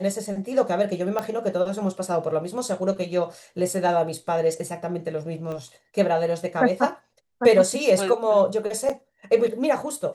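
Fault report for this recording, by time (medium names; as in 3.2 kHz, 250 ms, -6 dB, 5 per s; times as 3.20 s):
1.19 s: pop -13 dBFS
5.52 s: pop -23 dBFS
8.89–8.90 s: dropout 6 ms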